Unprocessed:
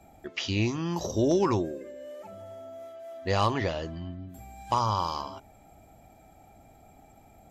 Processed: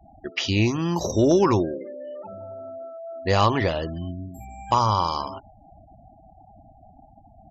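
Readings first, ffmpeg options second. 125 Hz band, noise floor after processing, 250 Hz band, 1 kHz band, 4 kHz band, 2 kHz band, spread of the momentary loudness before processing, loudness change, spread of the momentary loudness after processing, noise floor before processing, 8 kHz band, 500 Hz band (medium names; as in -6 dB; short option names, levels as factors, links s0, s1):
+6.0 dB, -53 dBFS, +6.0 dB, +6.0 dB, +6.0 dB, +6.0 dB, 18 LU, +6.0 dB, 18 LU, -56 dBFS, +5.0 dB, +6.0 dB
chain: -af "afftfilt=real='re*gte(hypot(re,im),0.00631)':imag='im*gte(hypot(re,im),0.00631)':win_size=1024:overlap=0.75,acontrast=56"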